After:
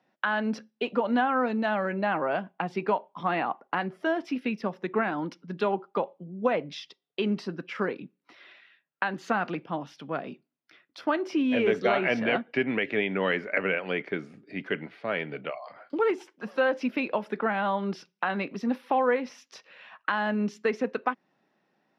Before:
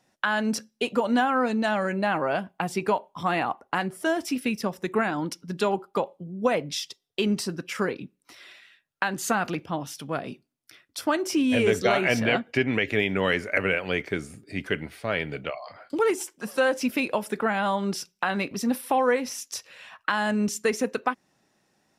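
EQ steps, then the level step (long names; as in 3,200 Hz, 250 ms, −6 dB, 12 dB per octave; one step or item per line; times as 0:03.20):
high-pass filter 150 Hz 24 dB per octave
high-frequency loss of the air 280 metres
low-shelf EQ 380 Hz −3 dB
0.0 dB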